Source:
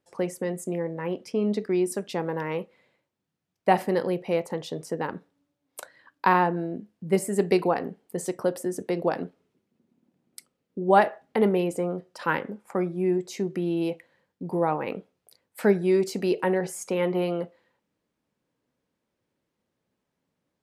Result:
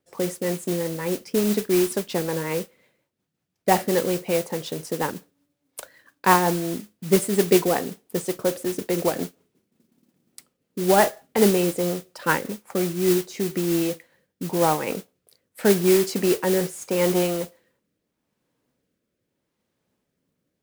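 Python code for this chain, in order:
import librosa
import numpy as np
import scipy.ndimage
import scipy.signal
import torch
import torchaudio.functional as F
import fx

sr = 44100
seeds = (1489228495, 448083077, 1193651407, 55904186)

y = fx.rotary_switch(x, sr, hz=5.5, then_hz=0.8, switch_at_s=13.53)
y = fx.mod_noise(y, sr, seeds[0], snr_db=11)
y = F.gain(torch.from_numpy(y), 5.0).numpy()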